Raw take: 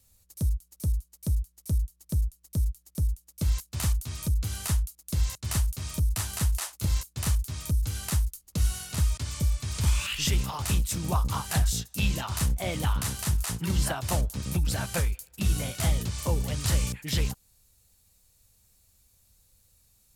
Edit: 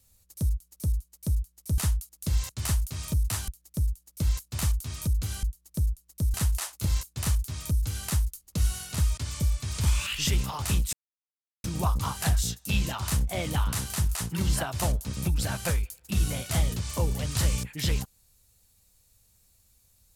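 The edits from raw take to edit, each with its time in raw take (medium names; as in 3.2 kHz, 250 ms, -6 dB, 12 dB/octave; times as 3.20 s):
1.78–2.69 s: swap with 4.64–6.34 s
10.93 s: insert silence 0.71 s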